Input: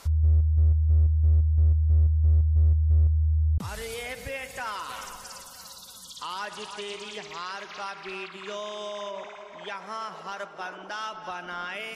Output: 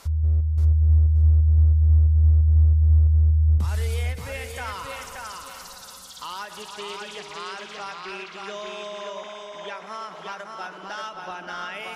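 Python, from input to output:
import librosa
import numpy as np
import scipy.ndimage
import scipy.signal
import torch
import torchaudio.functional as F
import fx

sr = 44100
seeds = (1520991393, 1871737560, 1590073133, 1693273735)

y = fx.echo_feedback(x, sr, ms=578, feedback_pct=19, wet_db=-4.0)
y = fx.end_taper(y, sr, db_per_s=140.0)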